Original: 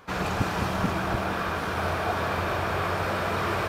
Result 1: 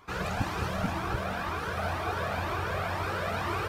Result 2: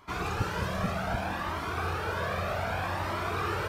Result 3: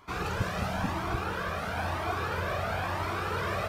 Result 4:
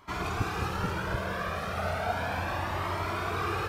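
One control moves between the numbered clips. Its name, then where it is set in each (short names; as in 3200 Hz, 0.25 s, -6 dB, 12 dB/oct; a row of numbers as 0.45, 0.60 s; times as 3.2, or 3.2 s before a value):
cascading flanger, rate: 2, 0.64, 0.99, 0.34 Hz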